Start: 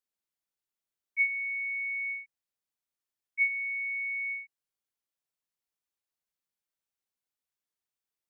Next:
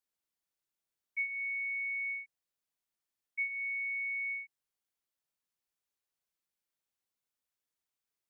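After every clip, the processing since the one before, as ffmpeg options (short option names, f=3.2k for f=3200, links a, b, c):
-af "acompressor=threshold=-35dB:ratio=3"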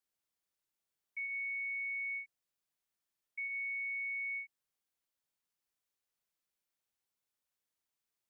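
-af "alimiter=level_in=11.5dB:limit=-24dB:level=0:latency=1,volume=-11.5dB"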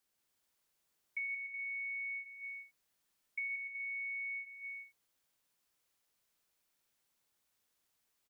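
-af "acompressor=threshold=-44dB:ratio=6,aecho=1:1:180|297|373|422.5|454.6:0.631|0.398|0.251|0.158|0.1,volume=6.5dB"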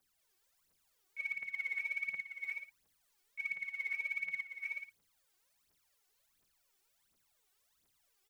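-af "alimiter=level_in=15.5dB:limit=-24dB:level=0:latency=1:release=149,volume=-15.5dB,aphaser=in_gain=1:out_gain=1:delay=2.8:decay=0.76:speed=1.4:type=triangular"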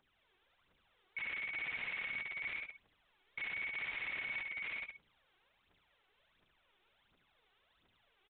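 -filter_complex "[0:a]aeval=exprs='(mod(126*val(0)+1,2)-1)/126':c=same,asplit=2[a][b];[b]aecho=0:1:71:0.447[c];[a][c]amix=inputs=2:normalize=0,aresample=8000,aresample=44100,volume=8.5dB"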